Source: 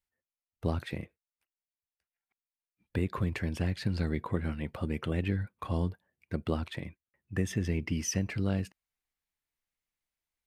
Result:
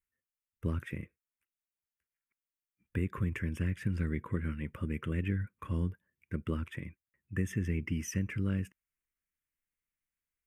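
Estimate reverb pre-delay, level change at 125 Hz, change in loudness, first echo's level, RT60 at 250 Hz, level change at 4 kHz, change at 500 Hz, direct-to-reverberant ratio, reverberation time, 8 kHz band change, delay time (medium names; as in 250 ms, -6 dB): no reverb, -1.5 dB, -2.0 dB, no echo, no reverb, -9.5 dB, -6.0 dB, no reverb, no reverb, -7.5 dB, no echo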